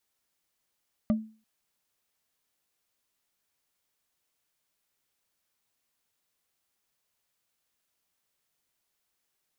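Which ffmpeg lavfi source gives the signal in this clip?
ffmpeg -f lavfi -i "aevalsrc='0.119*pow(10,-3*t/0.37)*sin(2*PI*219*t)+0.0447*pow(10,-3*t/0.11)*sin(2*PI*603.8*t)+0.0168*pow(10,-3*t/0.049)*sin(2*PI*1183.5*t)+0.00631*pow(10,-3*t/0.027)*sin(2*PI*1956.3*t)+0.00237*pow(10,-3*t/0.017)*sin(2*PI*2921.5*t)':duration=0.34:sample_rate=44100" out.wav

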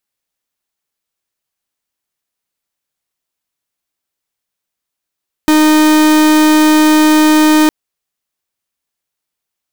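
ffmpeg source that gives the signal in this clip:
ffmpeg -f lavfi -i "aevalsrc='0.398*(2*lt(mod(308*t,1),0.44)-1)':duration=2.21:sample_rate=44100" out.wav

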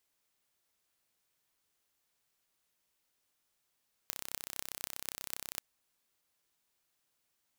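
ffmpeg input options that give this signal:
ffmpeg -f lavfi -i "aevalsrc='0.422*eq(mod(n,1361),0)*(0.5+0.5*eq(mod(n,10888),0))':duration=1.51:sample_rate=44100" out.wav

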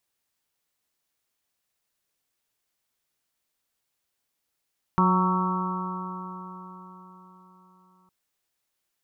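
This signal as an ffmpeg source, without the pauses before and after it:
ffmpeg -f lavfi -i "aevalsrc='0.1*pow(10,-3*t/4.34)*sin(2*PI*182.14*t)+0.0355*pow(10,-3*t/4.34)*sin(2*PI*365.09*t)+0.01*pow(10,-3*t/4.34)*sin(2*PI*549.67*t)+0.0112*pow(10,-3*t/4.34)*sin(2*PI*736.68*t)+0.0708*pow(10,-3*t/4.34)*sin(2*PI*926.91*t)+0.0794*pow(10,-3*t/4.34)*sin(2*PI*1121.1*t)+0.0447*pow(10,-3*t/4.34)*sin(2*PI*1319.99*t)':duration=3.11:sample_rate=44100" out.wav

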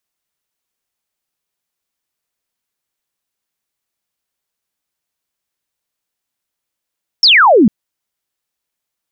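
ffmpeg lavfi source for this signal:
ffmpeg -f lavfi -i "aevalsrc='0.596*clip(t/0.002,0,1)*clip((0.45-t)/0.002,0,1)*sin(2*PI*5600*0.45/log(190/5600)*(exp(log(190/5600)*t/0.45)-1))':duration=0.45:sample_rate=44100" out.wav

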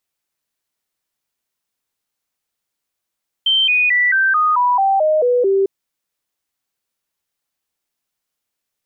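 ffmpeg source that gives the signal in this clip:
ffmpeg -f lavfi -i "aevalsrc='0.266*clip(min(mod(t,0.22),0.22-mod(t,0.22))/0.005,0,1)*sin(2*PI*3120*pow(2,-floor(t/0.22)/3)*mod(t,0.22))':duration=2.2:sample_rate=44100" out.wav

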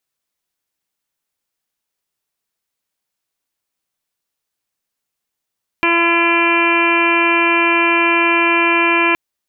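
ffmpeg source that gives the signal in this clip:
ffmpeg -f lavfi -i "aevalsrc='0.126*sin(2*PI*339*t)+0.0562*sin(2*PI*678*t)+0.133*sin(2*PI*1017*t)+0.0562*sin(2*PI*1356*t)+0.0794*sin(2*PI*1695*t)+0.0422*sin(2*PI*2034*t)+0.178*sin(2*PI*2373*t)+0.0708*sin(2*PI*2712*t)+0.0335*sin(2*PI*3051*t)':duration=3.32:sample_rate=44100" out.wav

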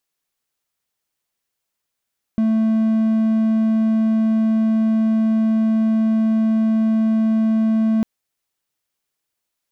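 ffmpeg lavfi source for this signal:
ffmpeg -f lavfi -i "aevalsrc='0.251*(1-4*abs(mod(221*t+0.25,1)-0.5))':duration=5.65:sample_rate=44100" out.wav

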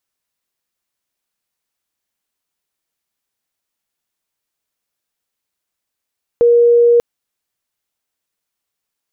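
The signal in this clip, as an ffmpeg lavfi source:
ffmpeg -f lavfi -i "aevalsrc='0.473*sin(2*PI*474*t)':duration=0.59:sample_rate=44100" out.wav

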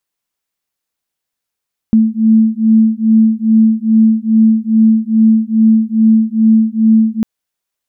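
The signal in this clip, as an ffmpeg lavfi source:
ffmpeg -f lavfi -i "aevalsrc='0.316*(sin(2*PI*220*t)+sin(2*PI*222.4*t))':duration=5.3:sample_rate=44100" out.wav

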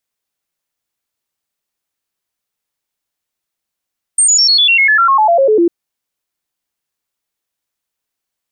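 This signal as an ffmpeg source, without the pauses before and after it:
ffmpeg -f lavfi -i "aevalsrc='0.473*clip(min(mod(t,0.1),0.1-mod(t,0.1))/0.005,0,1)*sin(2*PI*8680*pow(2,-floor(t/0.1)/3)*mod(t,0.1))':duration=1.5:sample_rate=44100" out.wav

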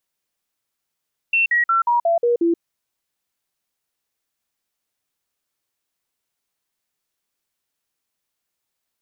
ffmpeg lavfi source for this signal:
ffmpeg -f lavfi -i "aevalsrc='0.2*clip(min(mod(t,0.18),0.13-mod(t,0.18))/0.005,0,1)*sin(2*PI*2700*pow(2,-floor(t/0.18)/2)*mod(t,0.18))':duration=1.26:sample_rate=44100" out.wav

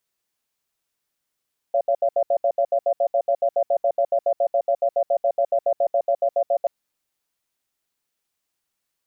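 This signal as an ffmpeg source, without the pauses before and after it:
ffmpeg -f lavfi -i "aevalsrc='0.112*(sin(2*PI*564*t)+sin(2*PI*686*t))*clip(min(mod(t,0.14),0.07-mod(t,0.14))/0.005,0,1)':duration=4.93:sample_rate=44100" out.wav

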